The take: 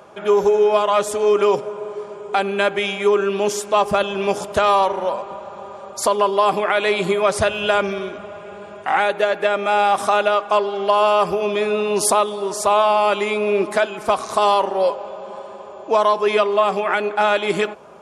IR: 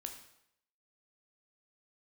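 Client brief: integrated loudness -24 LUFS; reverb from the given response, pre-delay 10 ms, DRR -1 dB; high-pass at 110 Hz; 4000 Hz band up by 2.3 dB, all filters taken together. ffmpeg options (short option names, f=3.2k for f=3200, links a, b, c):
-filter_complex "[0:a]highpass=110,equalizer=f=4k:t=o:g=3,asplit=2[a][b];[1:a]atrim=start_sample=2205,adelay=10[c];[b][c]afir=irnorm=-1:irlink=0,volume=4dB[d];[a][d]amix=inputs=2:normalize=0,volume=-9.5dB"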